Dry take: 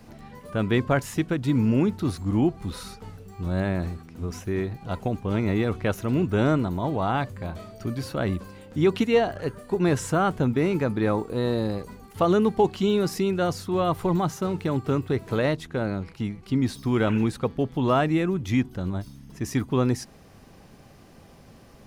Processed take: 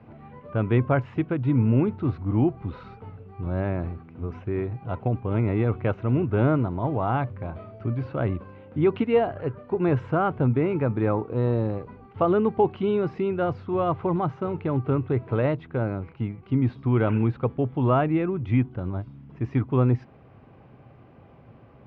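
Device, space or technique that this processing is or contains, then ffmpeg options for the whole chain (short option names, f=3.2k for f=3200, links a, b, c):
bass cabinet: -af "highpass=66,equalizer=f=120:t=q:w=4:g=7,equalizer=f=190:t=q:w=4:g=-5,equalizer=f=1.8k:t=q:w=4:g=-7,lowpass=f=2.4k:w=0.5412,lowpass=f=2.4k:w=1.3066"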